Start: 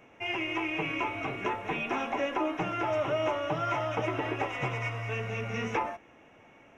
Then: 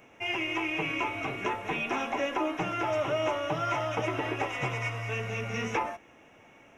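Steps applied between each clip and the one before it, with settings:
high-shelf EQ 4,700 Hz +8.5 dB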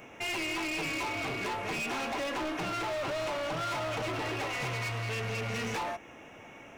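in parallel at −3 dB: downward compressor, threshold −38 dBFS, peak gain reduction 12.5 dB
on the sum: gain into a clipping stage and back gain 33.5 dB
level +1.5 dB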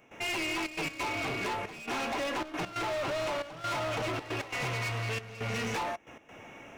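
gate pattern ".xxxxx.x.xxxxxx." 136 BPM −12 dB
level +1 dB

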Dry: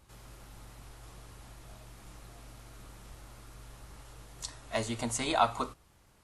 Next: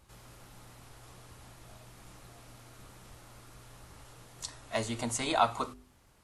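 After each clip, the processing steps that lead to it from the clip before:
hum removal 50.34 Hz, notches 8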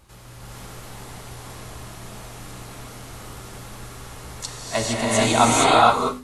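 reverb whose tail is shaped and stops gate 490 ms rising, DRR −6.5 dB
level +7.5 dB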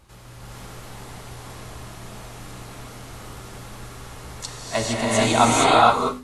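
high-shelf EQ 7,500 Hz −4 dB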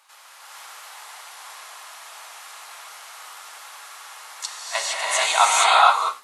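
high-pass filter 830 Hz 24 dB per octave
level +3 dB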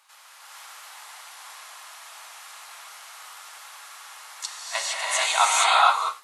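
low-shelf EQ 350 Hz −12 dB
level −2 dB

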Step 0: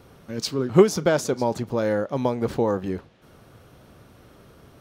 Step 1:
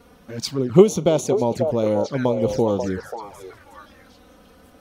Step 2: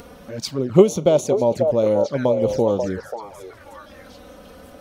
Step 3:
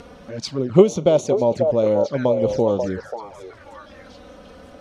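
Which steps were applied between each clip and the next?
echo through a band-pass that steps 538 ms, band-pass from 640 Hz, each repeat 1.4 octaves, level −3 dB; flanger swept by the level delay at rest 4.5 ms, full sweep at −19.5 dBFS; level +3.5 dB
parametric band 580 Hz +7.5 dB 0.29 octaves; upward compression, threshold −33 dBFS; level −1 dB
low-pass filter 6,500 Hz 12 dB per octave

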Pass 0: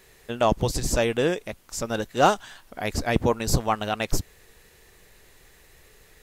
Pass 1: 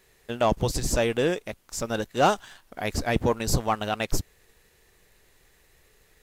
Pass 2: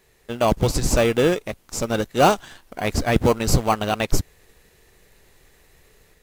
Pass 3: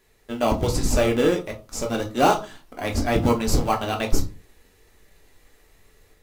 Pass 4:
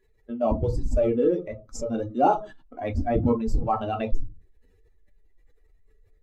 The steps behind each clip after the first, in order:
leveller curve on the samples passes 1; level −4.5 dB
automatic gain control gain up to 4 dB; in parallel at −9 dB: decimation without filtering 25×
flanger 1.2 Hz, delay 0.6 ms, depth 3.4 ms, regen −64%; on a send at −2.5 dB: convolution reverb RT60 0.30 s, pre-delay 3 ms
expanding power law on the bin magnitudes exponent 1.9; level −2 dB

